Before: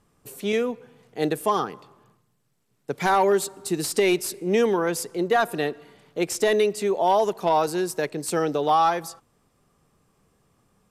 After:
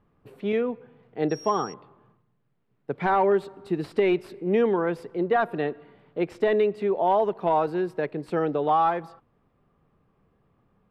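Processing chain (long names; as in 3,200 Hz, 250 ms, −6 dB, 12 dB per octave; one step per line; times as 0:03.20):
high-frequency loss of the air 460 metres
0:01.29–0:01.72: steady tone 5,600 Hz −42 dBFS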